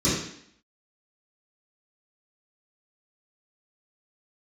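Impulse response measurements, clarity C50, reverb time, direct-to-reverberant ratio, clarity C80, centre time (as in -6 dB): 0.5 dB, 0.65 s, -14.0 dB, 5.0 dB, 59 ms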